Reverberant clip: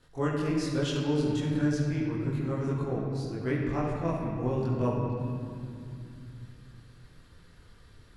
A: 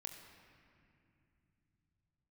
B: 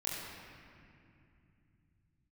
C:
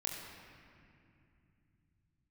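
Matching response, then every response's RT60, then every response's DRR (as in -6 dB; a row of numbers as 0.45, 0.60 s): B; 2.4, 2.5, 2.5 s; 2.5, -7.5, -2.0 dB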